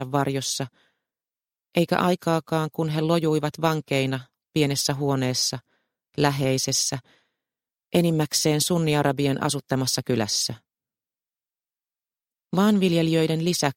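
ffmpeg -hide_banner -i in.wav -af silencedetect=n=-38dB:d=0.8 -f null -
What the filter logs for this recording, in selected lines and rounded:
silence_start: 0.67
silence_end: 1.75 | silence_duration: 1.08
silence_start: 6.99
silence_end: 7.93 | silence_duration: 0.93
silence_start: 10.55
silence_end: 12.53 | silence_duration: 1.98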